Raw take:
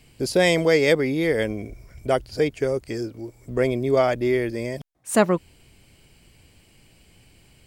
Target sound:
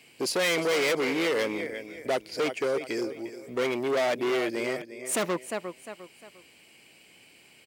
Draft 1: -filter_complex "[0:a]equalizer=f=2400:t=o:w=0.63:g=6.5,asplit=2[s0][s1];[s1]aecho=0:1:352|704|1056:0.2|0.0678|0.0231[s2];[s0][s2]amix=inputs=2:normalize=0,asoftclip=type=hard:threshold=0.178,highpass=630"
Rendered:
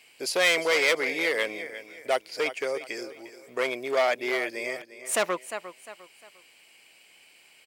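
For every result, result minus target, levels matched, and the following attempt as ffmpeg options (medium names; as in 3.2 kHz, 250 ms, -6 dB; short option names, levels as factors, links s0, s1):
250 Hz band -8.0 dB; hard clipper: distortion -6 dB
-filter_complex "[0:a]equalizer=f=2400:t=o:w=0.63:g=6.5,asplit=2[s0][s1];[s1]aecho=0:1:352|704|1056:0.2|0.0678|0.0231[s2];[s0][s2]amix=inputs=2:normalize=0,asoftclip=type=hard:threshold=0.178,highpass=290"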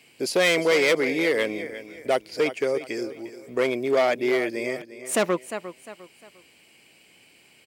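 hard clipper: distortion -6 dB
-filter_complex "[0:a]equalizer=f=2400:t=o:w=0.63:g=6.5,asplit=2[s0][s1];[s1]aecho=0:1:352|704|1056:0.2|0.0678|0.0231[s2];[s0][s2]amix=inputs=2:normalize=0,asoftclip=type=hard:threshold=0.075,highpass=290"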